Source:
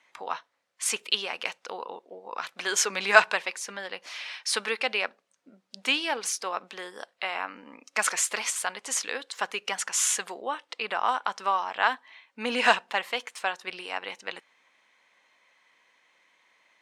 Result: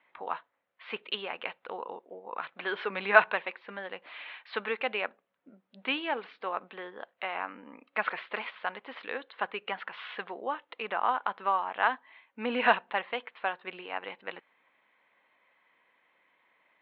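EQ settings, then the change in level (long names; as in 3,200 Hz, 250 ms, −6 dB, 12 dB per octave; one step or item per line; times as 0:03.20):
Butterworth low-pass 4,000 Hz 48 dB per octave
high-frequency loss of the air 410 metres
0.0 dB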